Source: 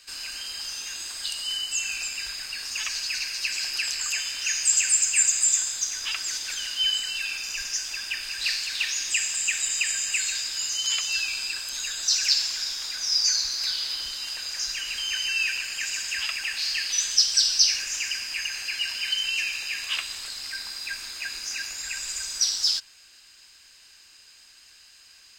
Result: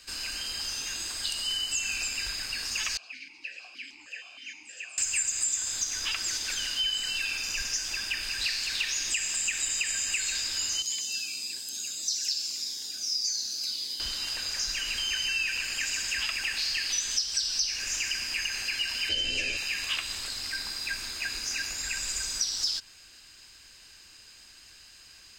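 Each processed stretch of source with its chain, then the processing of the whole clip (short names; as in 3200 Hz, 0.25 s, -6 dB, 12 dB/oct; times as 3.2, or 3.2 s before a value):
2.97–4.98 doubler 20 ms -13 dB + vowel sequencer 6.4 Hz
10.82–14 HPF 210 Hz + bell 1300 Hz -14.5 dB 2.7 oct + cascading phaser falling 1.7 Hz
19.09–19.57 LPF 8000 Hz + resonant low shelf 710 Hz +9.5 dB, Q 3 + doubler 12 ms -2 dB
whole clip: low shelf 470 Hz +9.5 dB; compressor 5:1, threshold -26 dBFS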